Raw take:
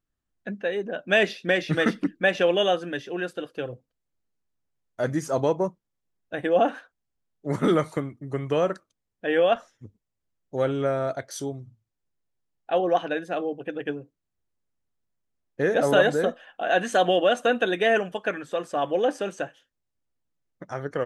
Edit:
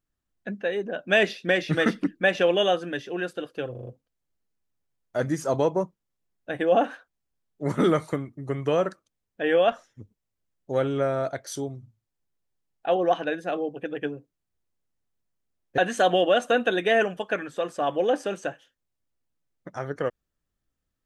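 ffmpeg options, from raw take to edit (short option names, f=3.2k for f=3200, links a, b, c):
-filter_complex "[0:a]asplit=6[a][b][c][d][e][f];[a]atrim=end=3.752[g];[b]atrim=start=3.708:end=3.752[h];[c]atrim=start=3.708:end=3.752[i];[d]atrim=start=3.708:end=3.752[j];[e]atrim=start=3.708:end=15.622[k];[f]atrim=start=16.728[l];[g][h]acrossfade=d=0.004:c1=hsin:c2=hsin[m];[m][i]acrossfade=d=0.004:c1=hsin:c2=hsin[n];[n][j]acrossfade=d=0.004:c1=hsin:c2=hsin[o];[o][k]acrossfade=d=0.004:c1=hsin:c2=hsin[p];[p][l]acrossfade=d=0.004:c1=hsin:c2=hsin"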